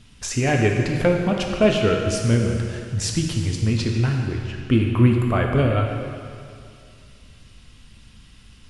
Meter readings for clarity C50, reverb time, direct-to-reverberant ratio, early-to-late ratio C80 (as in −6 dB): 2.5 dB, 2.3 s, 1.0 dB, 4.0 dB